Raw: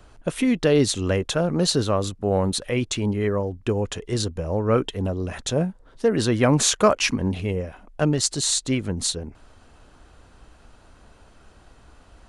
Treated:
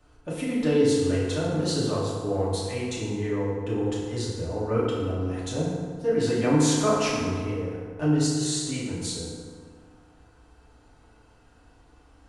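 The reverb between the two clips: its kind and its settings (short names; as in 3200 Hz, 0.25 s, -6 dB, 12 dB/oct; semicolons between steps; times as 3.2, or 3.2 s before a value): FDN reverb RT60 1.9 s, low-frequency decay 1×, high-frequency decay 0.55×, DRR -8 dB; gain -13.5 dB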